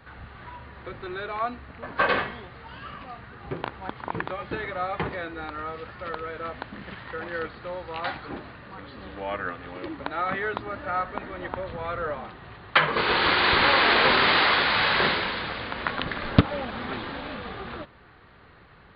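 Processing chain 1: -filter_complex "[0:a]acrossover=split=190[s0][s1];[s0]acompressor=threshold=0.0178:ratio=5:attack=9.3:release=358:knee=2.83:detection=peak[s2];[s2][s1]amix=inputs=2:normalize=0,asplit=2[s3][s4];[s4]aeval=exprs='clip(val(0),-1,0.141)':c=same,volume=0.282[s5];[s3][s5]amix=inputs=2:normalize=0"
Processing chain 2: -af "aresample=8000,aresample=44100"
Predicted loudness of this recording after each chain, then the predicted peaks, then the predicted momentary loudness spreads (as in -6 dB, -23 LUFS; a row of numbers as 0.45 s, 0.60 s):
-24.0 LUFS, -26.0 LUFS; -2.0 dBFS, -4.0 dBFS; 22 LU, 22 LU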